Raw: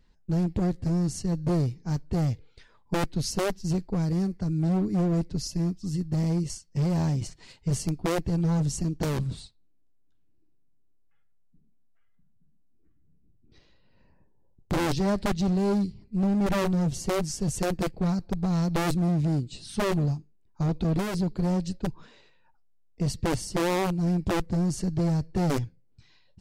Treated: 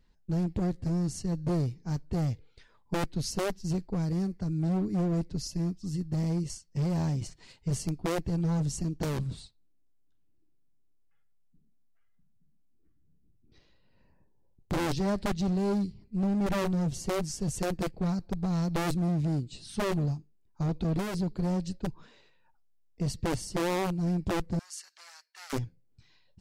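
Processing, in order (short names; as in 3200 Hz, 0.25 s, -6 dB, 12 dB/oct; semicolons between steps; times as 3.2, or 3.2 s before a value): 24.59–25.53 HPF 1300 Hz 24 dB/oct; gain -3.5 dB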